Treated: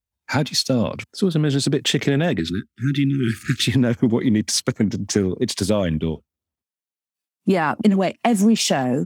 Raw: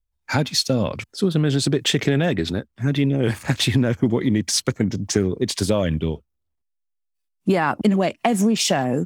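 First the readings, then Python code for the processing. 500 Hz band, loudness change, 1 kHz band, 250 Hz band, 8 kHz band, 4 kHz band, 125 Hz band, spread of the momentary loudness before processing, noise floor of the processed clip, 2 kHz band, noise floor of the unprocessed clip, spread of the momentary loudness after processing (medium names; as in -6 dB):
0.0 dB, +0.5 dB, 0.0 dB, +1.5 dB, 0.0 dB, 0.0 dB, -0.5 dB, 6 LU, under -85 dBFS, 0.0 dB, -76 dBFS, 7 LU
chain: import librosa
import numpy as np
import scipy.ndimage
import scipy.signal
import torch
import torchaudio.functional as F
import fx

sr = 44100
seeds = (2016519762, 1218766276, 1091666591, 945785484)

y = fx.spec_erase(x, sr, start_s=2.4, length_s=1.27, low_hz=400.0, high_hz=1200.0)
y = scipy.signal.sosfilt(scipy.signal.butter(2, 82.0, 'highpass', fs=sr, output='sos'), y)
y = fx.peak_eq(y, sr, hz=230.0, db=4.0, octaves=0.3)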